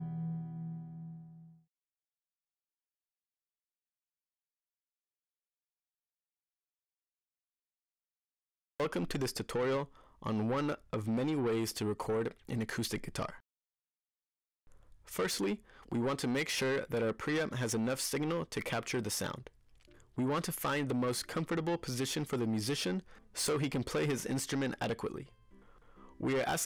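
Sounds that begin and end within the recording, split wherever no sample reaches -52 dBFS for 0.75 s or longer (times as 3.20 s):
8.80–13.40 s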